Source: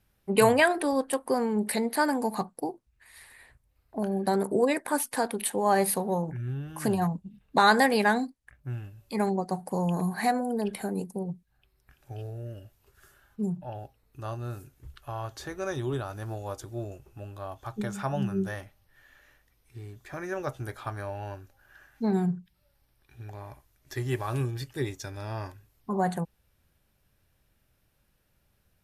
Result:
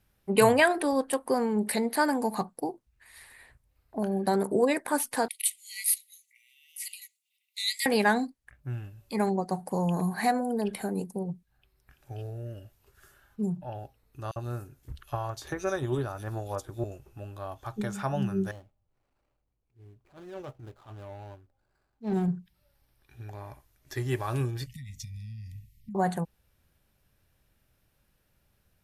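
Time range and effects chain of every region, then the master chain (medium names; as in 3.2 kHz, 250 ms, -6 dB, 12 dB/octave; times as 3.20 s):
5.28–7.86 s: brick-wall FIR high-pass 1.9 kHz + treble shelf 8.5 kHz +6.5 dB
14.31–16.84 s: transient shaper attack +7 dB, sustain -1 dB + bands offset in time highs, lows 50 ms, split 2.8 kHz
18.51–22.28 s: median filter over 25 samples + transient shaper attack -10 dB, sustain +1 dB + upward expansion, over -46 dBFS
24.66–25.95 s: bass shelf 420 Hz +9 dB + compression 16:1, threshold -35 dBFS + brick-wall FIR band-stop 250–1800 Hz
whole clip: none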